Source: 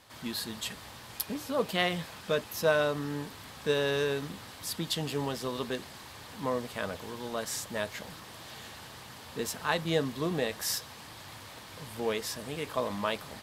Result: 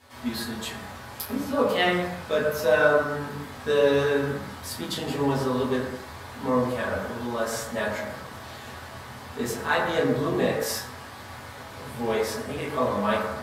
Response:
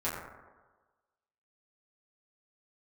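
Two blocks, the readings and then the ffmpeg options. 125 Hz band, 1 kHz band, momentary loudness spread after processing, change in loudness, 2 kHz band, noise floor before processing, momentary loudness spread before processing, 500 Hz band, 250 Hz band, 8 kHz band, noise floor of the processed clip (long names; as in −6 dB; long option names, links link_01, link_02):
+5.5 dB, +8.0 dB, 18 LU, +6.5 dB, +7.5 dB, −48 dBFS, 17 LU, +7.5 dB, +7.5 dB, +1.0 dB, −42 dBFS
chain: -filter_complex "[1:a]atrim=start_sample=2205,afade=type=out:start_time=0.38:duration=0.01,atrim=end_sample=17199[link_01];[0:a][link_01]afir=irnorm=-1:irlink=0"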